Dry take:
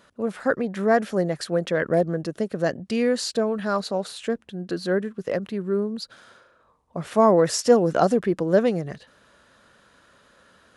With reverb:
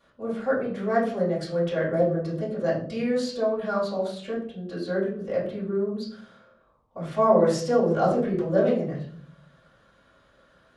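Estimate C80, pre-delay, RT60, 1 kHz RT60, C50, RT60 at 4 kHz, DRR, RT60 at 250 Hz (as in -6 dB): 9.0 dB, 3 ms, 0.55 s, 0.45 s, 5.0 dB, 0.35 s, -8.5 dB, 0.95 s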